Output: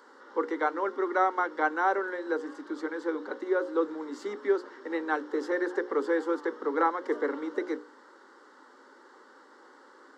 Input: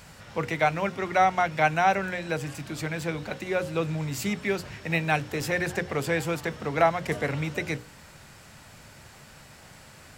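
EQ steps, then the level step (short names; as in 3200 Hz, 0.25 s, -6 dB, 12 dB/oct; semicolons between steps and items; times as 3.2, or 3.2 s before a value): steep high-pass 250 Hz 48 dB/oct; tape spacing loss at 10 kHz 31 dB; fixed phaser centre 670 Hz, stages 6; +5.0 dB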